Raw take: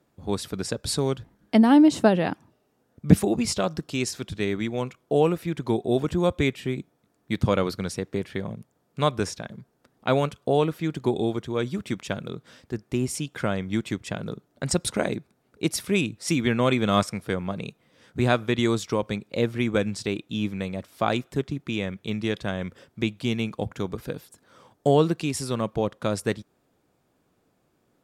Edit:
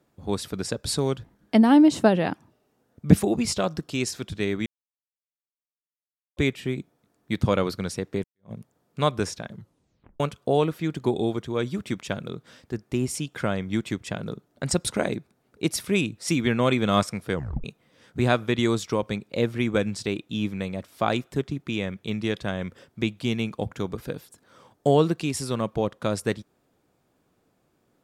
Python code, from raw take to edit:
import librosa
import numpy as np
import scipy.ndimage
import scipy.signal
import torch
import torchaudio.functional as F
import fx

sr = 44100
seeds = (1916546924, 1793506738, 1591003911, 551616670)

y = fx.edit(x, sr, fx.silence(start_s=4.66, length_s=1.71),
    fx.fade_in_span(start_s=8.24, length_s=0.28, curve='exp'),
    fx.tape_stop(start_s=9.53, length_s=0.67),
    fx.tape_stop(start_s=17.35, length_s=0.29), tone=tone)